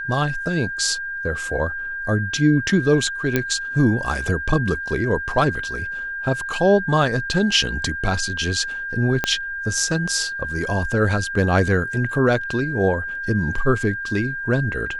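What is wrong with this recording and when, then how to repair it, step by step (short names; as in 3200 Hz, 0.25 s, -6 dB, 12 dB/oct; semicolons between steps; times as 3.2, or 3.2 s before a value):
tone 1600 Hz -26 dBFS
3.36 pop -5 dBFS
9.24 pop -5 dBFS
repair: de-click; notch 1600 Hz, Q 30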